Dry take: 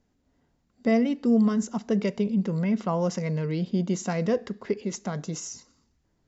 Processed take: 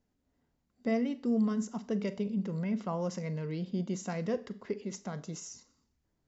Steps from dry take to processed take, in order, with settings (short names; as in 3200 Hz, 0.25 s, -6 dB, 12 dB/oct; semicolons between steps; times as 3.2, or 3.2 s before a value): Schroeder reverb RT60 0.35 s, combs from 29 ms, DRR 14.5 dB; gain -8 dB